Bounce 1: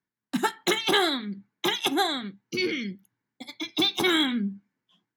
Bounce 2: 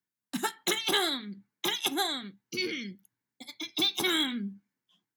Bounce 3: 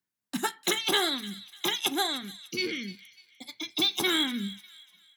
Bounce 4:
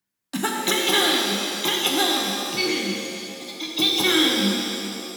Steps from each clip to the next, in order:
treble shelf 4.1 kHz +10 dB; trim -7 dB
feedback echo behind a high-pass 297 ms, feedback 38%, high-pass 2.1 kHz, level -15 dB; trim +1.5 dB
pitch-shifted reverb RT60 2.6 s, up +7 st, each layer -8 dB, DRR -1 dB; trim +4 dB

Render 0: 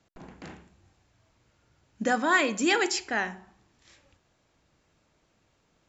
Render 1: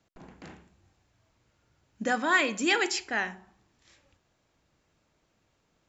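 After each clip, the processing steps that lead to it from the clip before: dynamic bell 2.6 kHz, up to +4 dB, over -36 dBFS, Q 0.8; trim -3 dB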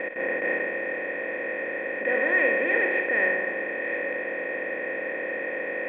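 spectral levelling over time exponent 0.2; transient shaper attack -8 dB, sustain -1 dB; cascade formant filter e; trim +7 dB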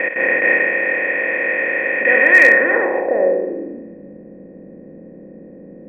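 low-pass sweep 2.4 kHz -> 180 Hz, 2.37–3.96 s; hard clipper -9.5 dBFS, distortion -33 dB; trim +7.5 dB

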